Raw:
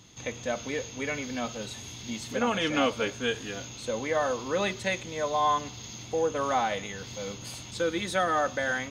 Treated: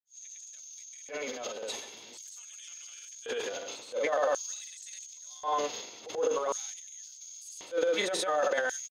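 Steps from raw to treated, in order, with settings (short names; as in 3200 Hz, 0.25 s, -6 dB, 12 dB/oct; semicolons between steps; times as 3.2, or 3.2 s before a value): grains, pitch spread up and down by 0 st; LFO high-pass square 0.46 Hz 480–6900 Hz; transient shaper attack -11 dB, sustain +10 dB; gain -4.5 dB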